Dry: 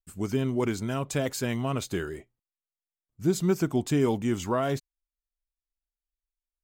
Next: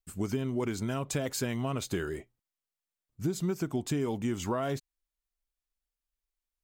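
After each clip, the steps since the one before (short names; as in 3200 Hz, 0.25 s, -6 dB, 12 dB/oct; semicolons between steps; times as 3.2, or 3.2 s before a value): compressor, threshold -29 dBFS, peak gain reduction 10.5 dB; gain +1.5 dB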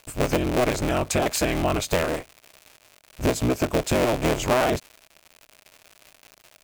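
cycle switcher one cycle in 3, inverted; crackle 210/s -43 dBFS; thirty-one-band EQ 200 Hz -7 dB, 630 Hz +7 dB, 2500 Hz +5 dB; gain +8.5 dB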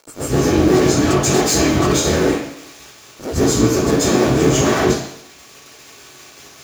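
soft clip -26.5 dBFS, distortion -7 dB; reverb RT60 0.70 s, pre-delay 0.126 s, DRR -11 dB; gain -4 dB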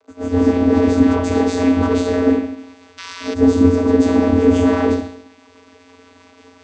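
air absorption 90 m; painted sound noise, 2.97–3.34, 970–6300 Hz -26 dBFS; vocoder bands 16, square 89.1 Hz; gain +2 dB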